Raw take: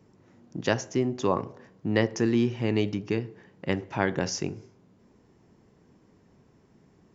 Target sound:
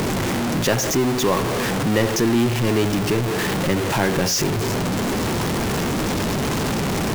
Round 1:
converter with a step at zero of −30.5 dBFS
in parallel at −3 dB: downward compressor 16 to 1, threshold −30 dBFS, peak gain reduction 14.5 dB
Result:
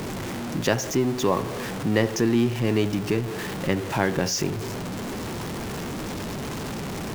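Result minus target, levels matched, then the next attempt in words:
converter with a step at zero: distortion −8 dB
converter with a step at zero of −19 dBFS
in parallel at −3 dB: downward compressor 16 to 1, threshold −30 dBFS, peak gain reduction 16 dB

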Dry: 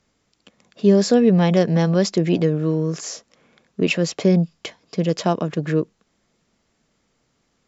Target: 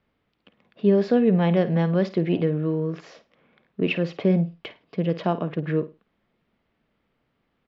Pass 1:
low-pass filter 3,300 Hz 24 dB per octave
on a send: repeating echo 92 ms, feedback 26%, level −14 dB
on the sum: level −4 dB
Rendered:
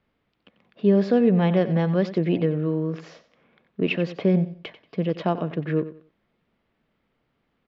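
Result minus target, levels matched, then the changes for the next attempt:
echo 39 ms late
change: repeating echo 53 ms, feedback 26%, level −14 dB

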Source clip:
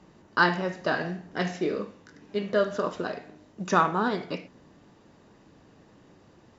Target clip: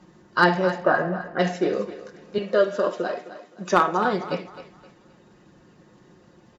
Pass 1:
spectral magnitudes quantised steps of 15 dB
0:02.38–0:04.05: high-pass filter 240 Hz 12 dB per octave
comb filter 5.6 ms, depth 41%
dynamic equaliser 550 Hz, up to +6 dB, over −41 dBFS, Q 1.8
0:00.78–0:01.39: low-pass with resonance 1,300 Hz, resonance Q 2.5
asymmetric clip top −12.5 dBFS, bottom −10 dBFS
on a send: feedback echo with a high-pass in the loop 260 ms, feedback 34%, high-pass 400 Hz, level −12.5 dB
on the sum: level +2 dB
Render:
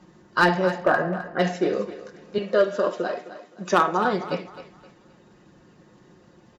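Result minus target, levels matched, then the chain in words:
asymmetric clip: distortion +7 dB
spectral magnitudes quantised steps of 15 dB
0:02.38–0:04.05: high-pass filter 240 Hz 12 dB per octave
comb filter 5.6 ms, depth 41%
dynamic equaliser 550 Hz, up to +6 dB, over −41 dBFS, Q 1.8
0:00.78–0:01.39: low-pass with resonance 1,300 Hz, resonance Q 2.5
asymmetric clip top −4.5 dBFS, bottom −10 dBFS
on a send: feedback echo with a high-pass in the loop 260 ms, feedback 34%, high-pass 400 Hz, level −12.5 dB
on the sum: level +2 dB

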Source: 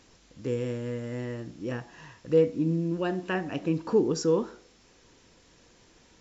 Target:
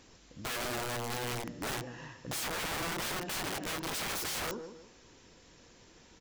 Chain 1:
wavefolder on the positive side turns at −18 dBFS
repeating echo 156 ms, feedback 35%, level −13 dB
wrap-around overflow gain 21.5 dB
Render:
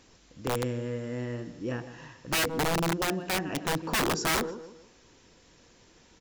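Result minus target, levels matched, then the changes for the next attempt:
wrap-around overflow: distortion −16 dB
change: wrap-around overflow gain 31 dB

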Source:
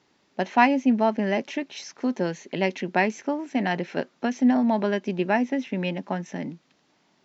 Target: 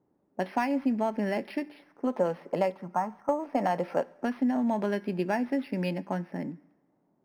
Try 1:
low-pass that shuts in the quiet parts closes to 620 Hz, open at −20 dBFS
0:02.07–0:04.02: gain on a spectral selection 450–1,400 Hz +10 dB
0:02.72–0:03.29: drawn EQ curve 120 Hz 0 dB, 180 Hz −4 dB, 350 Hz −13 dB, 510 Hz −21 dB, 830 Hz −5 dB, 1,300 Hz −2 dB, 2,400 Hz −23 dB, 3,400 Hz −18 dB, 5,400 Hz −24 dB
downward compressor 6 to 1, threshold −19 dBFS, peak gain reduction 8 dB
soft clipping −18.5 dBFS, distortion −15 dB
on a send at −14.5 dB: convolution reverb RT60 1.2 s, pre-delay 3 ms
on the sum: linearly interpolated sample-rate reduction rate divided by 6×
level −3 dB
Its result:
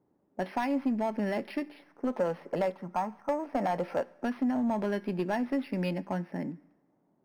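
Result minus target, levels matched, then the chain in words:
soft clipping: distortion +17 dB
low-pass that shuts in the quiet parts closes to 620 Hz, open at −20 dBFS
0:02.07–0:04.02: gain on a spectral selection 450–1,400 Hz +10 dB
0:02.72–0:03.29: drawn EQ curve 120 Hz 0 dB, 180 Hz −4 dB, 350 Hz −13 dB, 510 Hz −21 dB, 830 Hz −5 dB, 1,300 Hz −2 dB, 2,400 Hz −23 dB, 3,400 Hz −18 dB, 5,400 Hz −24 dB
downward compressor 6 to 1, threshold −19 dBFS, peak gain reduction 8 dB
soft clipping −7 dBFS, distortion −32 dB
on a send at −14.5 dB: convolution reverb RT60 1.2 s, pre-delay 3 ms
on the sum: linearly interpolated sample-rate reduction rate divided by 6×
level −3 dB

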